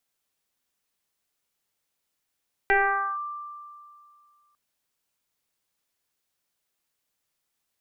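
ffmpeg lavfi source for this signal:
-f lavfi -i "aevalsrc='0.158*pow(10,-3*t/2.27)*sin(2*PI*1180*t+2.5*clip(1-t/0.48,0,1)*sin(2*PI*0.33*1180*t))':d=1.85:s=44100"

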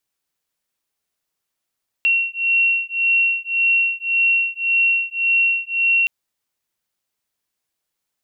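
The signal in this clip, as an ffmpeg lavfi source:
-f lavfi -i "aevalsrc='0.119*(sin(2*PI*2730*t)+sin(2*PI*2731.8*t))':d=4.02:s=44100"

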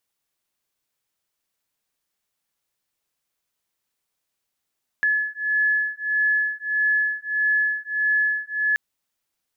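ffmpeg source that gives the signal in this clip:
-f lavfi -i "aevalsrc='0.075*(sin(2*PI*1710*t)+sin(2*PI*1711.6*t))':d=3.73:s=44100"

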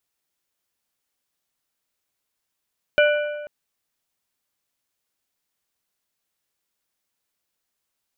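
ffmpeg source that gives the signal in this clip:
-f lavfi -i "aevalsrc='0.224*pow(10,-3*t/1.43)*sin(2*PI*593*t)+0.141*pow(10,-3*t/1.086)*sin(2*PI*1482.5*t)+0.0891*pow(10,-3*t/0.943)*sin(2*PI*2372*t)+0.0562*pow(10,-3*t/0.882)*sin(2*PI*2965*t)':d=0.49:s=44100"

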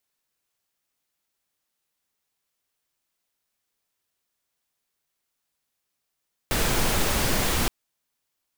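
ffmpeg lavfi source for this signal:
-f lavfi -i "anoisesrc=c=pink:a=0.363:d=1.17:r=44100:seed=1"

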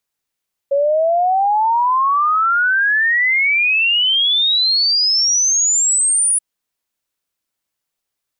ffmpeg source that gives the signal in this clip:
-f lavfi -i "aevalsrc='0.251*clip(min(t,5.68-t)/0.01,0,1)*sin(2*PI*550*5.68/log(9900/550)*(exp(log(9900/550)*t/5.68)-1))':d=5.68:s=44100"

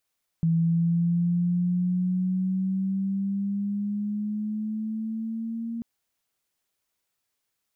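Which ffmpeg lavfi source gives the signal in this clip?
-f lavfi -i "aevalsrc='pow(10,(-19-10*t/5.39)/20)*sin(2*PI*164*5.39/(6*log(2)/12)*(exp(6*log(2)/12*t/5.39)-1))':d=5.39:s=44100"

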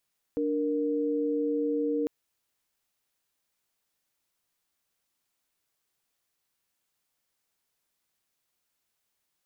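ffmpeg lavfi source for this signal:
-f lavfi -i "aevalsrc='0.0398*(sin(2*PI*293.66*t)+sin(2*PI*466.16*t))':d=1.7:s=44100"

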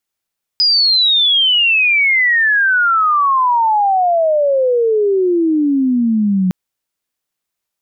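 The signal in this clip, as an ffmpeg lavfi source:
-f lavfi -i "aevalsrc='pow(10,(-9-2*t/5.91)/20)*sin(2*PI*5000*5.91/log(180/5000)*(exp(log(180/5000)*t/5.91)-1))':d=5.91:s=44100"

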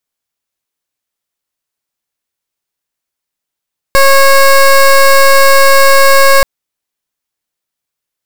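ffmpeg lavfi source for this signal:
-f lavfi -i "aevalsrc='0.596*(2*lt(mod(547*t,1),0.17)-1)':d=2.48:s=44100"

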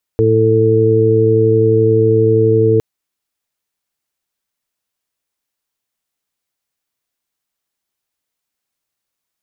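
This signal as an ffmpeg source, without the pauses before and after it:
-f lavfi -i "aevalsrc='0.2*sin(2*PI*111*t)+0.0631*sin(2*PI*222*t)+0.141*sin(2*PI*333*t)+0.299*sin(2*PI*444*t)':d=2.61:s=44100"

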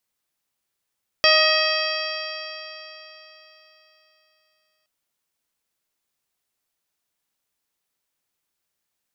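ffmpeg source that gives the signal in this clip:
-f lavfi -i "aevalsrc='0.119*pow(10,-3*t/3.68)*sin(2*PI*622.99*t)+0.0841*pow(10,-3*t/3.68)*sin(2*PI*1251.94*t)+0.1*pow(10,-3*t/3.68)*sin(2*PI*1892.68*t)+0.1*pow(10,-3*t/3.68)*sin(2*PI*2550.9*t)+0.0944*pow(10,-3*t/3.68)*sin(2*PI*3232.01*t)+0.0211*pow(10,-3*t/3.68)*sin(2*PI*3941.11*t)+0.133*pow(10,-3*t/3.68)*sin(2*PI*4682.93*t)+0.075*pow(10,-3*t/3.68)*sin(2*PI*5461.83*t)':d=3.62:s=44100"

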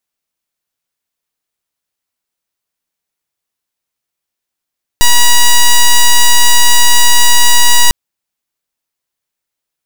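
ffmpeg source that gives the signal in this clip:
-f lavfi -i "aevalsrc='0.596*(2*lt(mod(964*t,1),0.06)-1)':d=2.9:s=44100"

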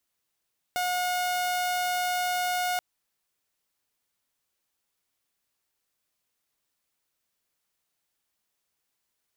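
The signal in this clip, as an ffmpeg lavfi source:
-f lavfi -i "aevalsrc='0.0708*(2*mod(722*t,1)-1)':d=2.03:s=44100"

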